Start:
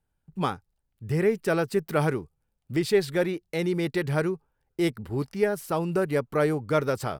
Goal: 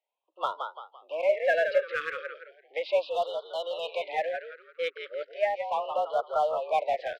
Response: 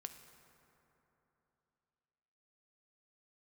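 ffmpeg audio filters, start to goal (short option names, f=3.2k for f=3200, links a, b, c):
-filter_complex "[0:a]asettb=1/sr,asplit=3[a][b][c];[a]atrim=end=3.104[d];[b]atrim=start=3.1:end=3.91,asetpts=PTS-STARTPTS,afade=t=in:d=0.004:c=qsin,afade=t=out:st=0.806:d=0.004:c=qsin,tiltshelf=f=730:g=-4.5[e];[c]atrim=start=3.906[f];[d][e]acrossfade=d=0.004:c1=hsin:c2=qsin[g];[g][f]acrossfade=d=0.004:c1=qsin:c2=hsin,asplit=5[h][i][j][k][l];[i]adelay=169,afreqshift=-67,volume=-7dB[m];[j]adelay=338,afreqshift=-134,volume=-15.4dB[n];[k]adelay=507,afreqshift=-201,volume=-23.8dB[o];[l]adelay=676,afreqshift=-268,volume=-32.2dB[p];[h][m][n][o][p]amix=inputs=5:normalize=0,highpass=f=400:t=q:w=0.5412,highpass=f=400:t=q:w=1.307,lowpass=f=3.5k:t=q:w=0.5176,lowpass=f=3.5k:t=q:w=0.7071,lowpass=f=3.5k:t=q:w=1.932,afreqshift=160,asettb=1/sr,asplit=3[q][r][s];[q]atrim=end=1.294[t];[r]atrim=start=1.29:end=1.88,asetpts=PTS-STARTPTS,afade=t=in:d=0.004:c=qsin,afade=t=out:st=0.586:d=0.004:c=qsin,aecho=1:1:1.8:0.86,atrim=end_sample=26019[u];[s]atrim=start=1.876[v];[t][u]acrossfade=d=0.004:c1=hsin:c2=qsin[w];[w][v]acrossfade=d=0.004:c1=qsin:c2=hsin,asplit=2[x][y];[y]asoftclip=type=hard:threshold=-28.5dB,volume=-8dB[z];[x][z]amix=inputs=2:normalize=0,asplit=3[aa][ab][ac];[aa]afade=t=out:st=5.33:d=0.02[ad];[ab]afreqshift=37,afade=t=in:st=5.33:d=0.02,afade=t=out:st=5.93:d=0.02[ae];[ac]afade=t=in:st=5.93:d=0.02[af];[ad][ae][af]amix=inputs=3:normalize=0,afftfilt=real='re*(1-between(b*sr/1024,780*pow(2100/780,0.5+0.5*sin(2*PI*0.36*pts/sr))/1.41,780*pow(2100/780,0.5+0.5*sin(2*PI*0.36*pts/sr))*1.41))':imag='im*(1-between(b*sr/1024,780*pow(2100/780,0.5+0.5*sin(2*PI*0.36*pts/sr))/1.41,780*pow(2100/780,0.5+0.5*sin(2*PI*0.36*pts/sr))*1.41))':win_size=1024:overlap=0.75,volume=-2dB"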